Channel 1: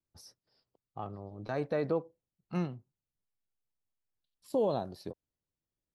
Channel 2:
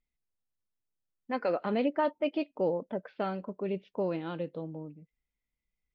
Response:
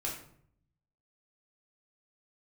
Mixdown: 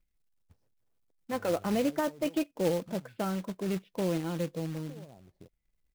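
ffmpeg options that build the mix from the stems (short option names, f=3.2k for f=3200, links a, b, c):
-filter_complex "[0:a]lowpass=1k,acompressor=threshold=-43dB:ratio=3,adelay=350,volume=-11dB[a];[1:a]aecho=1:1:6:0.31,volume=-2.5dB[b];[a][b]amix=inputs=2:normalize=0,lowshelf=f=190:g=11.5,acrusher=bits=3:mode=log:mix=0:aa=0.000001"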